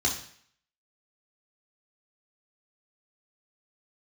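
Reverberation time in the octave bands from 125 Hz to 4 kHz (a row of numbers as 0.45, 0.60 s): 0.55, 0.55, 0.55, 0.60, 0.65, 0.60 s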